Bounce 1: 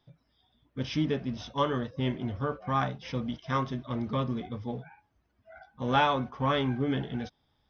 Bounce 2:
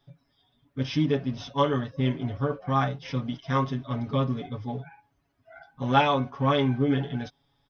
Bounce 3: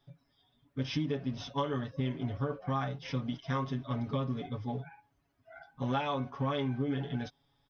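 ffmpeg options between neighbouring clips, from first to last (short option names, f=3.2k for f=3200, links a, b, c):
-af "aecho=1:1:7.2:0.91"
-af "acompressor=threshold=-25dB:ratio=10,volume=-3dB"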